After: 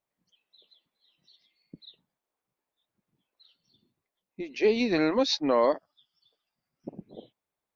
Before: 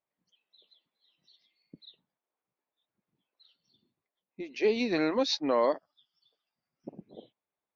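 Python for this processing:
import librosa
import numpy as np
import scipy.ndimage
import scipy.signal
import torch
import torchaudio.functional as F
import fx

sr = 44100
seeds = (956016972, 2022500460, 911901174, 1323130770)

y = fx.low_shelf(x, sr, hz=96.0, db=8.5)
y = y * 10.0 ** (2.5 / 20.0)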